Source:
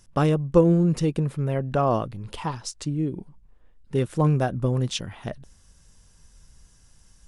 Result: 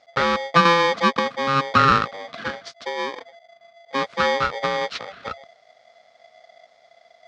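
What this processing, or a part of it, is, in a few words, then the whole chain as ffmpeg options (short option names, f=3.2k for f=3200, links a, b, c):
ring modulator pedal into a guitar cabinet: -filter_complex "[0:a]asettb=1/sr,asplit=3[a][b][c];[a]atrim=end=0.654[d];[b]atrim=start=0.65:end=2.34,asetpts=PTS-STARTPTS,afade=t=in:d=0.004:c=qsin,afade=t=out:st=1.686:d=0.004:c=qsin,equalizer=f=440:t=o:w=0.99:g=9[e];[c]atrim=start=2.336[f];[d][e]acrossfade=d=0.004:c1=hsin:c2=qsin[g];[g][f]acrossfade=d=0.004:c1=qsin:c2=hsin,aeval=exprs='val(0)*sgn(sin(2*PI*680*n/s))':c=same,highpass=93,equalizer=f=94:t=q:w=4:g=-5,equalizer=f=160:t=q:w=4:g=-4,equalizer=f=330:t=q:w=4:g=-10,equalizer=f=900:t=q:w=4:g=-8,equalizer=f=1.3k:t=q:w=4:g=7,equalizer=f=2.7k:t=q:w=4:g=-5,lowpass=f=4.5k:w=0.5412,lowpass=f=4.5k:w=1.3066,volume=1.5dB"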